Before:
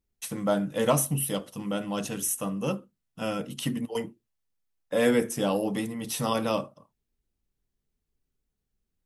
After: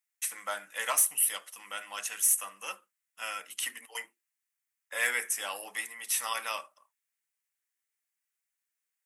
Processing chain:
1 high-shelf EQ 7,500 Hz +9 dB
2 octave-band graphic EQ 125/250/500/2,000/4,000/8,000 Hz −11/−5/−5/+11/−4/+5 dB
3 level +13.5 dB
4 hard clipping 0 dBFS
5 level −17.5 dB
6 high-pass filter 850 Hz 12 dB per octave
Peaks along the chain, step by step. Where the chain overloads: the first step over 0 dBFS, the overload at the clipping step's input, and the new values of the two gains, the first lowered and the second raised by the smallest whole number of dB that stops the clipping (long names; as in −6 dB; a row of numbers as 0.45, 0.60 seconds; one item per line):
−8.5, −5.5, +8.0, 0.0, −17.5, −16.0 dBFS
step 3, 8.0 dB
step 3 +5.5 dB, step 5 −9.5 dB